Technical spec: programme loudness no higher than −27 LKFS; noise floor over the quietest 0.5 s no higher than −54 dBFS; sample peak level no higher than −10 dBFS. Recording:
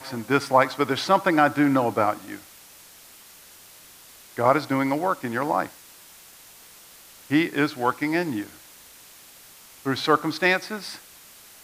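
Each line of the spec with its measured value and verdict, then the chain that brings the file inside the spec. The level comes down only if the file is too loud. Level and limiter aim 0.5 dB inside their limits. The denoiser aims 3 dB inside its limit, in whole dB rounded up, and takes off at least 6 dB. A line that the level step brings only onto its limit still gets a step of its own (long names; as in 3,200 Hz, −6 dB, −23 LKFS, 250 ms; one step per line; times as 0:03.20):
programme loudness −23.0 LKFS: out of spec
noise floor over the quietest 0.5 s −49 dBFS: out of spec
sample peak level −5.0 dBFS: out of spec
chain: broadband denoise 6 dB, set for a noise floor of −49 dBFS
level −4.5 dB
brickwall limiter −10.5 dBFS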